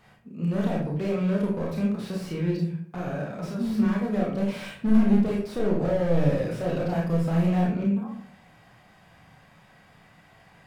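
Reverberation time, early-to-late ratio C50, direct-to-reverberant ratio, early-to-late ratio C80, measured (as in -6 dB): 0.60 s, 3.5 dB, -2.5 dB, 8.5 dB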